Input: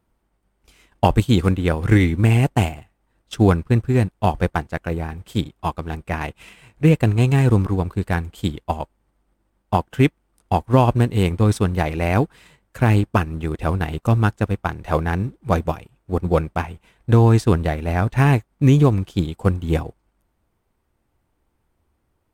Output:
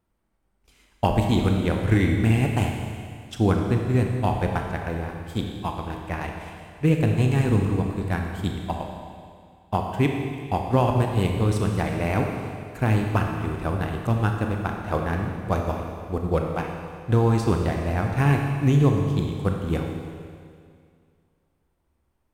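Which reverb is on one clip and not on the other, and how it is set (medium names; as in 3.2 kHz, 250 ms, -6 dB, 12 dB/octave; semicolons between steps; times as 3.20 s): Schroeder reverb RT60 2.2 s, combs from 28 ms, DRR 2 dB; trim -6 dB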